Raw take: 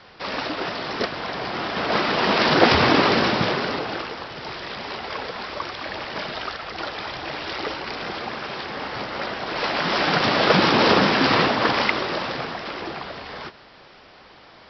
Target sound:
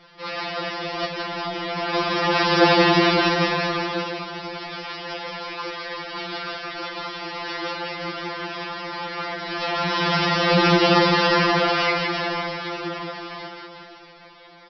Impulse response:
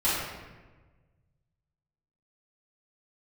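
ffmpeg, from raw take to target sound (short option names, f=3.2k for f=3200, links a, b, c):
-af "aecho=1:1:170|357|562.7|789|1038:0.631|0.398|0.251|0.158|0.1,afftfilt=real='re*2.83*eq(mod(b,8),0)':imag='im*2.83*eq(mod(b,8),0)':win_size=2048:overlap=0.75"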